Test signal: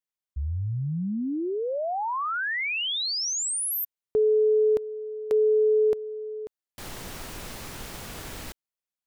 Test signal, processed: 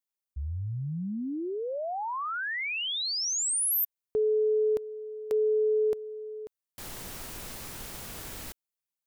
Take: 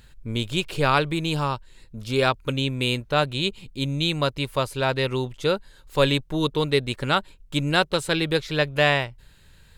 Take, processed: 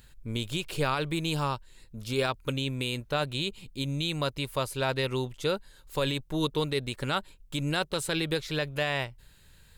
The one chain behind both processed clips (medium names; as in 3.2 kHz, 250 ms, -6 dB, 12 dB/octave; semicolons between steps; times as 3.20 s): treble shelf 7.4 kHz +8 dB; peak limiter -12.5 dBFS; trim -4.5 dB